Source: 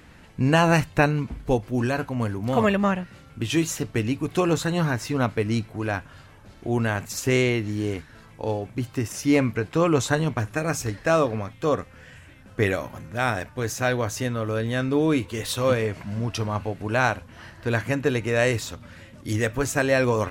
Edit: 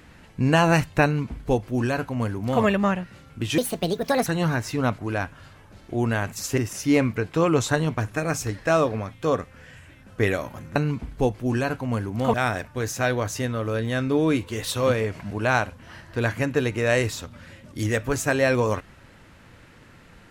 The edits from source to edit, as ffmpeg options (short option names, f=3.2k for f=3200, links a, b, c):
-filter_complex "[0:a]asplit=8[a][b][c][d][e][f][g][h];[a]atrim=end=3.584[i];[b]atrim=start=3.58:end=4.63,asetpts=PTS-STARTPTS,asetrate=67473,aresample=44100[j];[c]atrim=start=4.626:end=5.352[k];[d]atrim=start=5.718:end=7.312[l];[e]atrim=start=8.968:end=13.152[m];[f]atrim=start=1.038:end=2.622[n];[g]atrim=start=13.148:end=16.122[o];[h]atrim=start=16.798[p];[i][j]acrossfade=d=0.004:c1=hsin:c2=hsin[q];[q][k]acrossfade=d=0.004:c1=hsin:c2=hsin[r];[r][l]acrossfade=d=0.004:c1=hsin:c2=hsin[s];[s][m]acrossfade=d=0.004:c1=hsin:c2=hsin[t];[t][n]acrossfade=d=0.004:c1=hsin:c2=hsin[u];[u][o]acrossfade=d=0.004:c1=hsin:c2=hsin[v];[v][p]acrossfade=d=0.004:c1=hsin:c2=hsin"